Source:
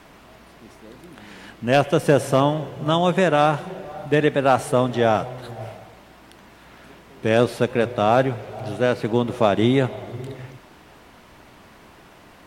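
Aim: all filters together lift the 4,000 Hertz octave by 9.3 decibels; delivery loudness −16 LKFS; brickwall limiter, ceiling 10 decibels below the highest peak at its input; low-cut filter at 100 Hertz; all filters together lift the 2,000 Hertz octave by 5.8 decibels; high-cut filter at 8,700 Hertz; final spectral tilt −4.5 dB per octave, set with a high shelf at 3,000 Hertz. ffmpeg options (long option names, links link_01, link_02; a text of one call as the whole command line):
ffmpeg -i in.wav -af "highpass=100,lowpass=8700,equalizer=frequency=2000:width_type=o:gain=3.5,highshelf=frequency=3000:gain=8.5,equalizer=frequency=4000:width_type=o:gain=4.5,volume=8dB,alimiter=limit=-2dB:level=0:latency=1" out.wav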